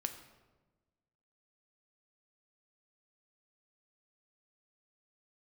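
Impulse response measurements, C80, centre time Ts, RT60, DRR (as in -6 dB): 11.5 dB, 16 ms, 1.2 s, 6.5 dB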